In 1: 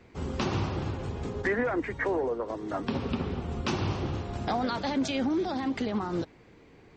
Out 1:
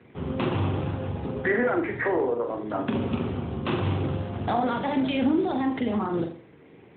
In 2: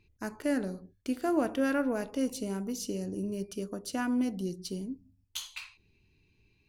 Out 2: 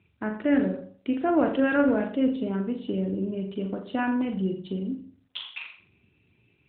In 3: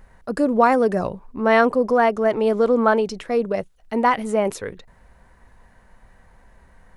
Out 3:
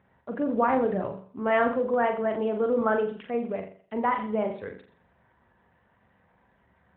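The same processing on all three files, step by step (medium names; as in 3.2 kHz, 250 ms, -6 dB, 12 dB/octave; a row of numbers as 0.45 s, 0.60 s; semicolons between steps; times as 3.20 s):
flutter echo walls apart 7.2 m, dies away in 0.46 s; AMR-NB 12.2 kbps 8 kHz; normalise loudness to -27 LUFS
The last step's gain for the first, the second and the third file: +3.5 dB, +5.5 dB, -8.0 dB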